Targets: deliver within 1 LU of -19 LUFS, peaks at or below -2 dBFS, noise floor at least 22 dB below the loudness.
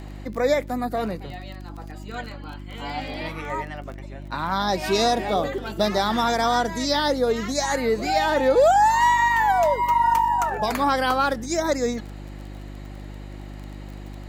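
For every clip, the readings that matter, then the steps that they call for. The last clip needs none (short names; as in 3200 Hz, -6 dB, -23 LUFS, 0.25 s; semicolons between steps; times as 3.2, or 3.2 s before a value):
ticks 26/s; hum 50 Hz; harmonics up to 350 Hz; hum level -34 dBFS; loudness -22.0 LUFS; peak -7.5 dBFS; loudness target -19.0 LUFS
-> de-click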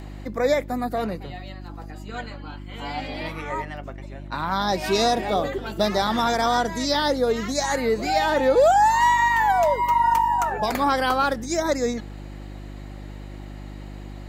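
ticks 0.21/s; hum 50 Hz; harmonics up to 350 Hz; hum level -35 dBFS
-> de-hum 50 Hz, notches 7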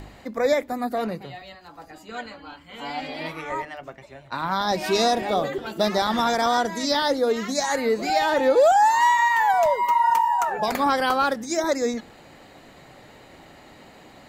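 hum none; loudness -22.0 LUFS; peak -7.5 dBFS; loudness target -19.0 LUFS
-> gain +3 dB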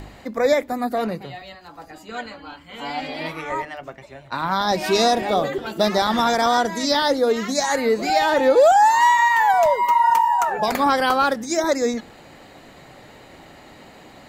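loudness -19.0 LUFS; peak -4.5 dBFS; noise floor -46 dBFS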